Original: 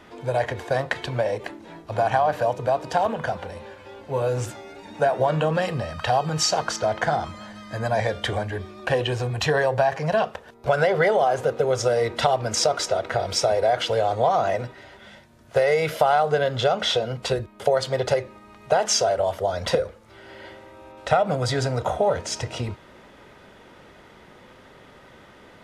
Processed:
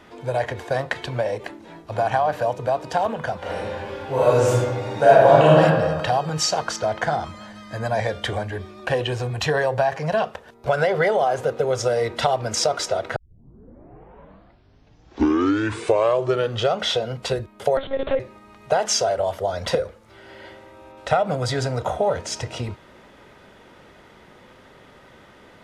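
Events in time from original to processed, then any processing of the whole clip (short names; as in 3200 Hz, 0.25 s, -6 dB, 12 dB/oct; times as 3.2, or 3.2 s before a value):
3.39–5.59 reverb throw, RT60 1.5 s, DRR -8.5 dB
13.16 tape start 3.66 s
17.77–18.2 monotone LPC vocoder at 8 kHz 270 Hz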